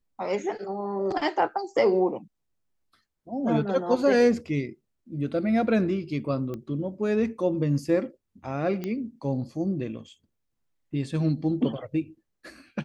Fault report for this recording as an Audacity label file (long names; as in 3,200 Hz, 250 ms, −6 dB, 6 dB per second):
6.540000	6.540000	click −23 dBFS
8.840000	8.840000	click −19 dBFS